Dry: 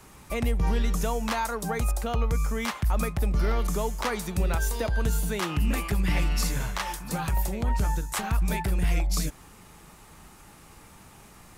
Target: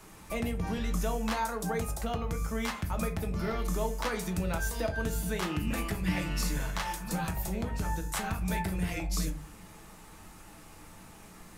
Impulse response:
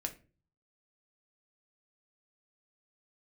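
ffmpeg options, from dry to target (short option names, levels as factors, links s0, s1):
-filter_complex "[0:a]bandreject=f=50:t=h:w=6,bandreject=f=100:t=h:w=6,bandreject=f=150:t=h:w=6,asplit=2[s0][s1];[s1]acompressor=threshold=0.0224:ratio=6,volume=1[s2];[s0][s2]amix=inputs=2:normalize=0[s3];[1:a]atrim=start_sample=2205[s4];[s3][s4]afir=irnorm=-1:irlink=0,volume=0.473"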